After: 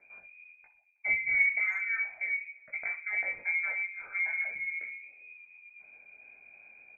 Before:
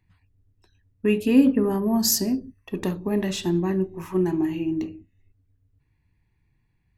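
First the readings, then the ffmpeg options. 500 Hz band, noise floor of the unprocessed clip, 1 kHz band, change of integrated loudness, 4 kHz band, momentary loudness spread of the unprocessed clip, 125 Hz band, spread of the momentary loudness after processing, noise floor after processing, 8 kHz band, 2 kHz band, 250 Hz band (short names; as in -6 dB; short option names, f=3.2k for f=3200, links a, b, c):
-29.5 dB, -69 dBFS, -14.0 dB, -6.5 dB, under -40 dB, 12 LU, under -35 dB, 21 LU, -63 dBFS, under -40 dB, +13.0 dB, under -40 dB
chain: -filter_complex "[0:a]flanger=delay=17:depth=4.4:speed=2.9,areverse,acompressor=mode=upward:threshold=-31dB:ratio=2.5,areverse,aemphasis=mode=production:type=75fm,asplit=2[a][b];[b]adelay=64,lowpass=f=1.3k:p=1,volume=-13dB,asplit=2[c][d];[d]adelay=64,lowpass=f=1.3k:p=1,volume=0.47,asplit=2[e][f];[f]adelay=64,lowpass=f=1.3k:p=1,volume=0.47,asplit=2[g][h];[h]adelay=64,lowpass=f=1.3k:p=1,volume=0.47,asplit=2[i][j];[j]adelay=64,lowpass=f=1.3k:p=1,volume=0.47[k];[c][e][g][i][k]amix=inputs=5:normalize=0[l];[a][l]amix=inputs=2:normalize=0,lowpass=f=2.1k:t=q:w=0.5098,lowpass=f=2.1k:t=q:w=0.6013,lowpass=f=2.1k:t=q:w=0.9,lowpass=f=2.1k:t=q:w=2.563,afreqshift=-2500,asplit=2[m][n];[n]adelay=320,highpass=300,lowpass=3.4k,asoftclip=type=hard:threshold=-19dB,volume=-27dB[o];[m][o]amix=inputs=2:normalize=0,volume=-5dB"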